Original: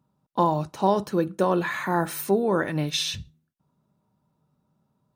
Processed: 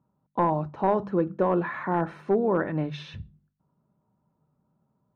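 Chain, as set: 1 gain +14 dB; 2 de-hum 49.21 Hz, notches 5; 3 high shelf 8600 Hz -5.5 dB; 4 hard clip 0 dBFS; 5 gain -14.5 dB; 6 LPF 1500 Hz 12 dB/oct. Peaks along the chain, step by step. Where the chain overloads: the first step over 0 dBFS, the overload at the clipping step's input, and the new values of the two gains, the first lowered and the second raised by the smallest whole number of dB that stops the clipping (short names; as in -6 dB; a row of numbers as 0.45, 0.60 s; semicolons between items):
+6.0, +5.5, +5.5, 0.0, -14.5, -14.0 dBFS; step 1, 5.5 dB; step 1 +8 dB, step 5 -8.5 dB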